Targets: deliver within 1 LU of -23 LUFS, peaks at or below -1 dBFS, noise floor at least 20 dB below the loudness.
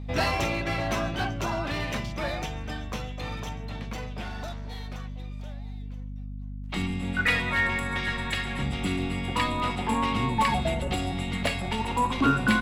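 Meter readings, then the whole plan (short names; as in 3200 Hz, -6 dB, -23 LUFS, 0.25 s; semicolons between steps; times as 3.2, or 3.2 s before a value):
hum 50 Hz; harmonics up to 250 Hz; hum level -34 dBFS; loudness -28.5 LUFS; peak -9.0 dBFS; loudness target -23.0 LUFS
-> notches 50/100/150/200/250 Hz; gain +5.5 dB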